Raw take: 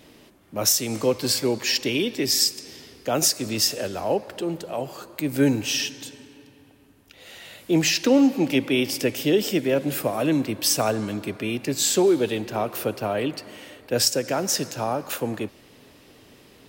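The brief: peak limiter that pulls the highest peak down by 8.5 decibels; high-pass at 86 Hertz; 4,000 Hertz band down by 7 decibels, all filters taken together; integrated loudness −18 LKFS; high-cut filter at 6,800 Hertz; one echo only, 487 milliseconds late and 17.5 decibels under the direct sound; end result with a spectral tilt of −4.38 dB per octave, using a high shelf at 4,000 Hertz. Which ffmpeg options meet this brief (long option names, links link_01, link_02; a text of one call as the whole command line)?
ffmpeg -i in.wav -af "highpass=86,lowpass=6800,highshelf=frequency=4000:gain=-5.5,equalizer=frequency=4000:width_type=o:gain=-4.5,alimiter=limit=-16dB:level=0:latency=1,aecho=1:1:487:0.133,volume=9.5dB" out.wav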